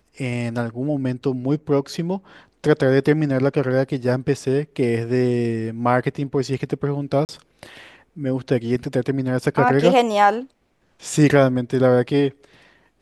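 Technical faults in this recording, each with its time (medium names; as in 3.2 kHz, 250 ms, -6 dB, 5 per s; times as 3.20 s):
7.25–7.29 s: dropout 39 ms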